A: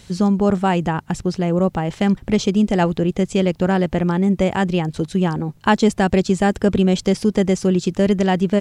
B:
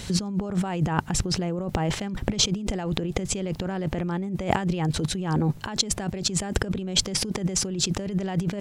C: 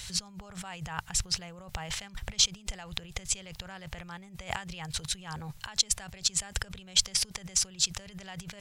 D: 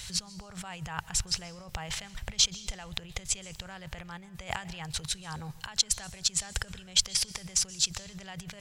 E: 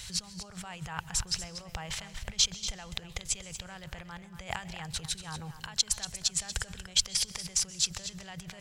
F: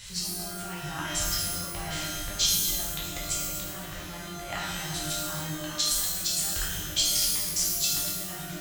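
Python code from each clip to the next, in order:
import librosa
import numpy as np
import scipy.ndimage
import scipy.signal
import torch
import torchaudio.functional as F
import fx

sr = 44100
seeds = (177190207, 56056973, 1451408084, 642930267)

y1 = fx.over_compress(x, sr, threshold_db=-27.0, ratio=-1.0)
y2 = fx.tone_stack(y1, sr, knobs='10-0-10')
y3 = fx.rev_plate(y2, sr, seeds[0], rt60_s=0.74, hf_ratio=1.0, predelay_ms=115, drr_db=19.0)
y4 = y3 + 10.0 ** (-11.5 / 20.0) * np.pad(y3, (int(237 * sr / 1000.0), 0))[:len(y3)]
y4 = y4 * 10.0 ** (-1.5 / 20.0)
y5 = fx.rev_shimmer(y4, sr, seeds[1], rt60_s=1.0, semitones=12, shimmer_db=-2, drr_db=-6.0)
y5 = y5 * 10.0 ** (-4.5 / 20.0)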